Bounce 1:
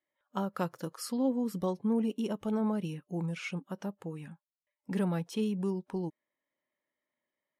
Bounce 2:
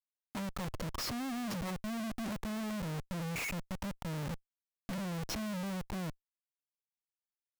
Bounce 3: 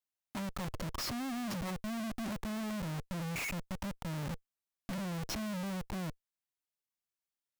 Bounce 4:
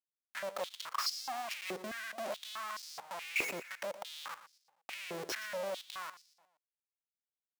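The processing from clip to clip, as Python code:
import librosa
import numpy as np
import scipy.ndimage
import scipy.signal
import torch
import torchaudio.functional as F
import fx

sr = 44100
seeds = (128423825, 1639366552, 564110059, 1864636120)

y1 = fx.fixed_phaser(x, sr, hz=2200.0, stages=8)
y1 = fx.schmitt(y1, sr, flips_db=-50.0)
y1 = y1 * librosa.db_to_amplitude(1.0)
y2 = fx.notch(y1, sr, hz=470.0, q=12.0)
y3 = fx.law_mismatch(y2, sr, coded='A')
y3 = fx.echo_feedback(y3, sr, ms=118, feedback_pct=43, wet_db=-13.5)
y3 = fx.filter_held_highpass(y3, sr, hz=4.7, low_hz=390.0, high_hz=5000.0)
y3 = y3 * librosa.db_to_amplitude(2.5)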